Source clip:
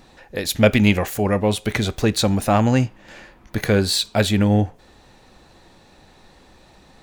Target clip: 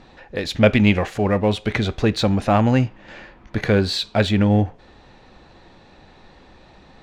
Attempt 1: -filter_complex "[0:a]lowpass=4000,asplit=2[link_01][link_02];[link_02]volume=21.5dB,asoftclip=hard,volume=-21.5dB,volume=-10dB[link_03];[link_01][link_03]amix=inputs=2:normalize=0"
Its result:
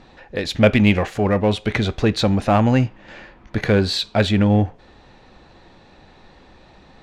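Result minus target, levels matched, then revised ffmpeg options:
gain into a clipping stage and back: distortion −4 dB
-filter_complex "[0:a]lowpass=4000,asplit=2[link_01][link_02];[link_02]volume=32.5dB,asoftclip=hard,volume=-32.5dB,volume=-10dB[link_03];[link_01][link_03]amix=inputs=2:normalize=0"

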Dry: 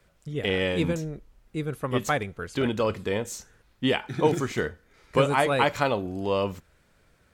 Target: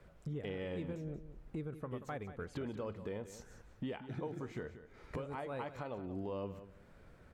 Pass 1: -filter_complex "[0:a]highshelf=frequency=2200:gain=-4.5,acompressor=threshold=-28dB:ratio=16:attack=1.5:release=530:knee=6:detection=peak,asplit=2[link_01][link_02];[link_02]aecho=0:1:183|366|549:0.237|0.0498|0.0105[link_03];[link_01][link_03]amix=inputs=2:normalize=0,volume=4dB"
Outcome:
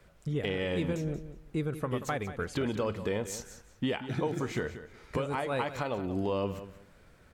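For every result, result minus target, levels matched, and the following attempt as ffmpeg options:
downward compressor: peak gain reduction −10 dB; 4,000 Hz band +5.0 dB
-filter_complex "[0:a]highshelf=frequency=2200:gain=-4.5,acompressor=threshold=-39dB:ratio=16:attack=1.5:release=530:knee=6:detection=peak,asplit=2[link_01][link_02];[link_02]aecho=0:1:183|366|549:0.237|0.0498|0.0105[link_03];[link_01][link_03]amix=inputs=2:normalize=0,volume=4dB"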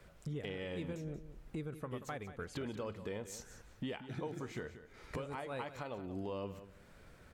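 4,000 Hz band +5.5 dB
-filter_complex "[0:a]highshelf=frequency=2200:gain=-14,acompressor=threshold=-39dB:ratio=16:attack=1.5:release=530:knee=6:detection=peak,asplit=2[link_01][link_02];[link_02]aecho=0:1:183|366|549:0.237|0.0498|0.0105[link_03];[link_01][link_03]amix=inputs=2:normalize=0,volume=4dB"

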